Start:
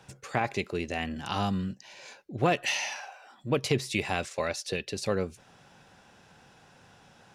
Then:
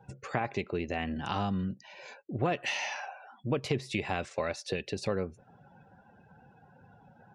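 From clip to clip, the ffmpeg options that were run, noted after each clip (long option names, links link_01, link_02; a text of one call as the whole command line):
ffmpeg -i in.wav -af "afftdn=noise_reduction=23:noise_floor=-53,highshelf=frequency=4400:gain=-12,acompressor=threshold=-35dB:ratio=2,volume=3.5dB" out.wav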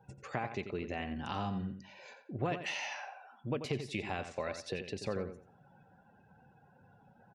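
ffmpeg -i in.wav -filter_complex "[0:a]asplit=2[link_01][link_02];[link_02]adelay=88,lowpass=frequency=4500:poles=1,volume=-9dB,asplit=2[link_03][link_04];[link_04]adelay=88,lowpass=frequency=4500:poles=1,volume=0.25,asplit=2[link_05][link_06];[link_06]adelay=88,lowpass=frequency=4500:poles=1,volume=0.25[link_07];[link_01][link_03][link_05][link_07]amix=inputs=4:normalize=0,volume=-5.5dB" out.wav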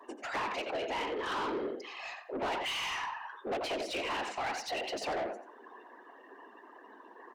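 ffmpeg -i in.wav -filter_complex "[0:a]afftfilt=real='hypot(re,im)*cos(2*PI*random(0))':imag='hypot(re,im)*sin(2*PI*random(1))':win_size=512:overlap=0.75,afreqshift=200,asplit=2[link_01][link_02];[link_02]highpass=frequency=720:poles=1,volume=25dB,asoftclip=type=tanh:threshold=-26.5dB[link_03];[link_01][link_03]amix=inputs=2:normalize=0,lowpass=frequency=3700:poles=1,volume=-6dB" out.wav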